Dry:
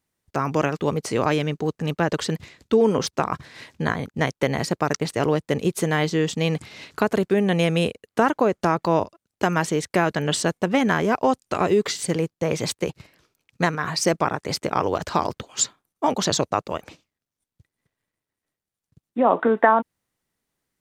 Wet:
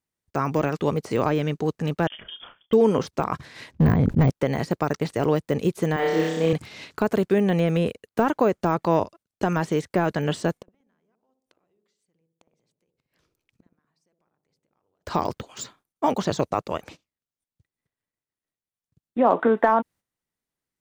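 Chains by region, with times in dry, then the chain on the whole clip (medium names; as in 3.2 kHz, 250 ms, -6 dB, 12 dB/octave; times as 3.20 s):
2.07–2.73 s: compression 16:1, threshold -35 dBFS + doubling 31 ms -10.5 dB + frequency inversion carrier 3.4 kHz
3.71–4.30 s: tilt EQ -4 dB/octave + hard clipper -12.5 dBFS + decay stretcher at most 47 dB/s
5.96–6.53 s: companding laws mixed up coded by A + high-pass 310 Hz + flutter echo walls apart 5.3 m, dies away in 1.3 s
10.62–15.06 s: compression 2.5:1, threshold -40 dBFS + inverted gate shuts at -35 dBFS, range -29 dB + feedback echo behind a low-pass 61 ms, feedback 52%, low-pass 560 Hz, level -3.5 dB
whole clip: gate -45 dBFS, range -9 dB; de-esser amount 95%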